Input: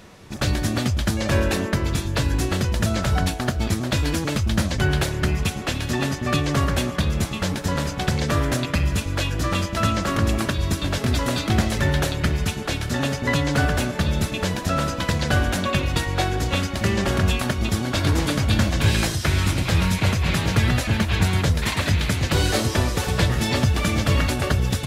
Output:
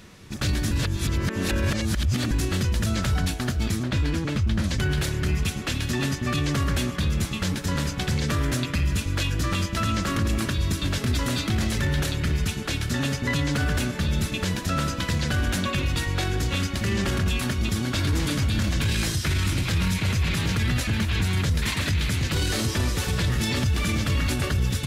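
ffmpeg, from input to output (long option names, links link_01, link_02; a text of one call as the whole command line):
ffmpeg -i in.wav -filter_complex "[0:a]asettb=1/sr,asplit=3[link_01][link_02][link_03];[link_01]atrim=end=3.834[link_04];[link_02]atrim=start=3.83:end=4.64,asetpts=PTS-STARTPTS,afade=type=in:duration=0.004:curve=qsin,afade=type=out:start_time=0.806:duration=0.004:curve=qsin,lowpass=frequency=2400:poles=1[link_05];[link_03]atrim=start=4.636[link_06];[link_04][link_05]acrossfade=duration=0.004:curve1=hsin:curve2=qsin[link_07];[link_07][link_06]acrossfade=duration=0.004:curve1=qsin:curve2=hsin,asplit=3[link_08][link_09][link_10];[link_08]atrim=end=0.712[link_11];[link_09]atrim=start=0.708:end=2.312,asetpts=PTS-STARTPTS,areverse[link_12];[link_10]atrim=start=2.308[link_13];[link_11][link_12]acrossfade=duration=0.004:curve1=hsin:curve2=hsin[link_14];[link_14][link_13]acrossfade=duration=0.004:curve1=hsin:curve2=hsin,equalizer=frequency=690:width=0.99:gain=-8,alimiter=limit=-16dB:level=0:latency=1:release=10" out.wav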